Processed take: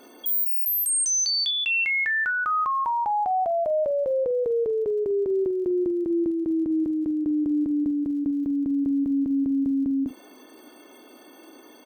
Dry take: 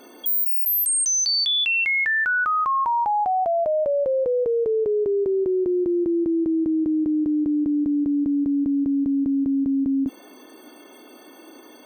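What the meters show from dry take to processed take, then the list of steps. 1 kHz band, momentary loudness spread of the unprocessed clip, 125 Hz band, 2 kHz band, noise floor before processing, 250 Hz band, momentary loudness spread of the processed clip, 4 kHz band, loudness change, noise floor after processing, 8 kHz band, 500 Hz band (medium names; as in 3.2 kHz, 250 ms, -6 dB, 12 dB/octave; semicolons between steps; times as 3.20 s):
-2.5 dB, 4 LU, -3.0 dB, -3.0 dB, -47 dBFS, -2.5 dB, 5 LU, -3.5 dB, -2.5 dB, -50 dBFS, -2.0 dB, -2.5 dB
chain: crackle 58 per s -44 dBFS; doubling 47 ms -14 dB; trim -3 dB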